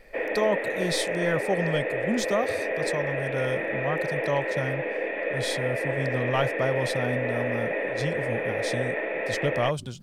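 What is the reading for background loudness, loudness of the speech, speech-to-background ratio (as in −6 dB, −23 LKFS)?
−28.5 LKFS, −30.5 LKFS, −2.0 dB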